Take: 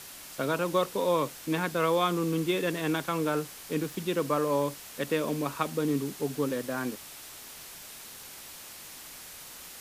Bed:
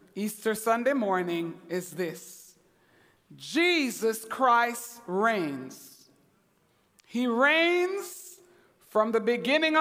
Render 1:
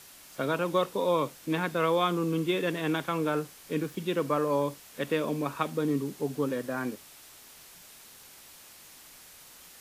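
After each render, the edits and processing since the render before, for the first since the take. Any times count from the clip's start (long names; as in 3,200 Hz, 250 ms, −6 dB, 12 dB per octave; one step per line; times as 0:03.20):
noise reduction from a noise print 6 dB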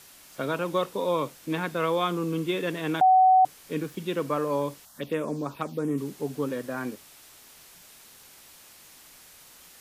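0:03.01–0:03.45: beep over 750 Hz −14 dBFS
0:04.85–0:05.98: phaser swept by the level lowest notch 360 Hz, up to 4,500 Hz, full sweep at −24 dBFS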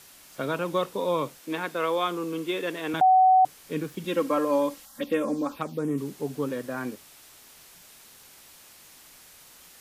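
0:01.40–0:02.94: high-pass filter 280 Hz
0:04.04–0:05.59: comb filter 3.7 ms, depth 88%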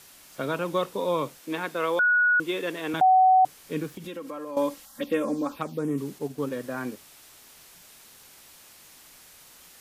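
0:01.99–0:02.40: beep over 1,460 Hz −17.5 dBFS
0:03.88–0:04.57: downward compressor 4 to 1, threshold −35 dBFS
0:06.18–0:06.61: transient designer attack −1 dB, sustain −5 dB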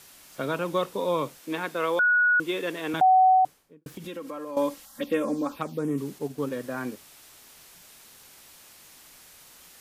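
0:03.25–0:03.86: fade out and dull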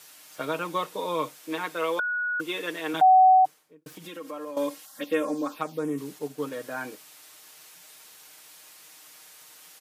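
high-pass filter 460 Hz 6 dB per octave
comb filter 6.5 ms, depth 59%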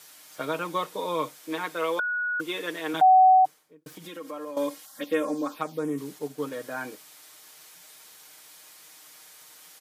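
notch filter 2,700 Hz, Q 17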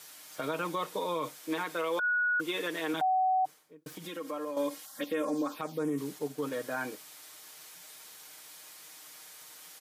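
brickwall limiter −23.5 dBFS, peak gain reduction 11.5 dB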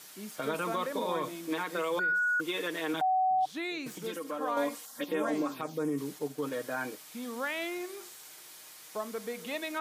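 mix in bed −12.5 dB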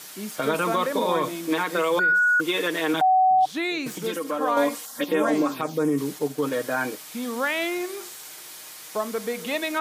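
level +9 dB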